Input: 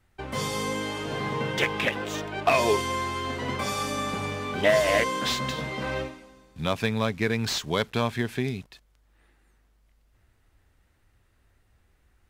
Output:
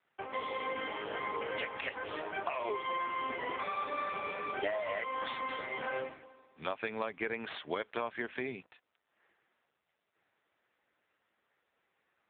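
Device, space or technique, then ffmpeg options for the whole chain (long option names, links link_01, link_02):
voicemail: -af "highpass=430,lowpass=3200,lowpass=5900,acompressor=threshold=-30dB:ratio=8" -ar 8000 -c:a libopencore_amrnb -b:a 5900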